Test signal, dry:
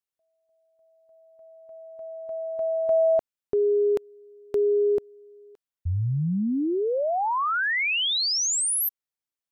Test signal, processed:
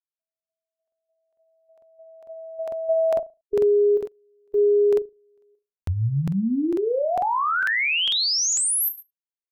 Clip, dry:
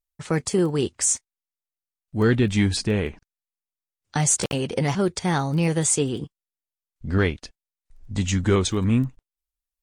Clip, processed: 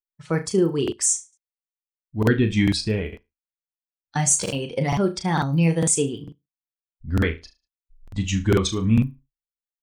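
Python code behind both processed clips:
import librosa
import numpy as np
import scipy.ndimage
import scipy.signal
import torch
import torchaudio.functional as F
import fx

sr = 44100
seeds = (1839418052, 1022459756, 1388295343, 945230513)

y = fx.bin_expand(x, sr, power=1.5)
y = fx.room_flutter(y, sr, wall_m=6.2, rt60_s=0.25)
y = fx.buffer_crackle(y, sr, first_s=0.83, period_s=0.45, block=2048, kind='repeat')
y = y * librosa.db_to_amplitude(2.5)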